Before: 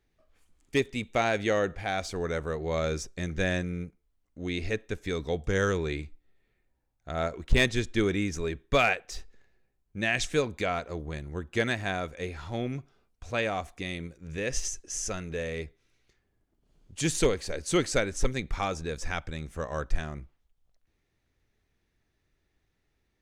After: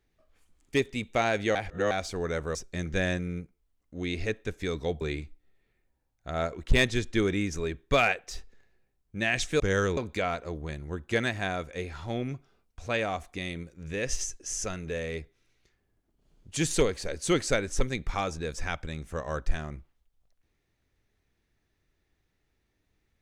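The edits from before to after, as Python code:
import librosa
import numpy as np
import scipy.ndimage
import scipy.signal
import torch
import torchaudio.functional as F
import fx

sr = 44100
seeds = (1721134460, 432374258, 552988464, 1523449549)

y = fx.edit(x, sr, fx.reverse_span(start_s=1.55, length_s=0.36),
    fx.cut(start_s=2.55, length_s=0.44),
    fx.move(start_s=5.45, length_s=0.37, to_s=10.41), tone=tone)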